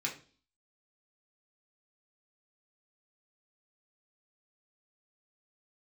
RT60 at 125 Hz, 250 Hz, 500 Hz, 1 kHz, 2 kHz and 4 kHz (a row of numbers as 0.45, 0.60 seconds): 0.50, 0.55, 0.45, 0.35, 0.35, 0.45 seconds